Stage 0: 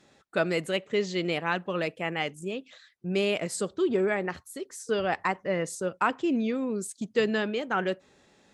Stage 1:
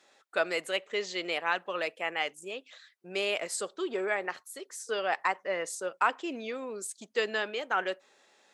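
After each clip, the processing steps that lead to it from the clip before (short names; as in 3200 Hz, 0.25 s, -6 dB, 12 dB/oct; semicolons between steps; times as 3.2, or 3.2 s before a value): HPF 560 Hz 12 dB/oct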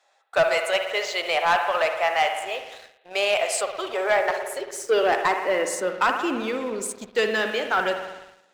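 spring tank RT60 1.4 s, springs 55 ms, chirp 30 ms, DRR 6.5 dB; high-pass sweep 700 Hz -> 120 Hz, 4.08–6.62; sample leveller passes 2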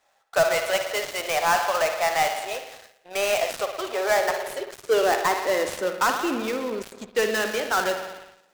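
switching dead time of 0.11 ms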